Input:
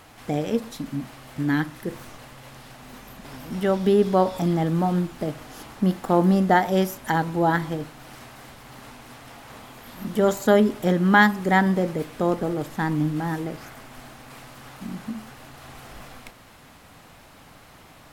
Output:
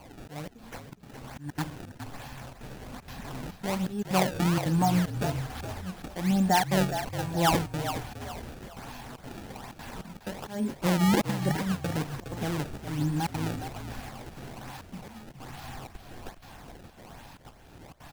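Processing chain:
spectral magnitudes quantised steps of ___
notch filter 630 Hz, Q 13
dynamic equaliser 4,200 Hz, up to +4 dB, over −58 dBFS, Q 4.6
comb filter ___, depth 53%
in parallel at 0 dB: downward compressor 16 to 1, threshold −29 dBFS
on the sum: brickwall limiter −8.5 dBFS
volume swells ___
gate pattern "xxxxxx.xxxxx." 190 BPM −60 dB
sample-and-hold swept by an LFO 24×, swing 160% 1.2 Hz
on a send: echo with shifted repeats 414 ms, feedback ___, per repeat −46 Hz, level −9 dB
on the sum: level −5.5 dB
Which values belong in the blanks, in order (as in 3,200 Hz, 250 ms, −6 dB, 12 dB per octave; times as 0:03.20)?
15 dB, 1.2 ms, 318 ms, 36%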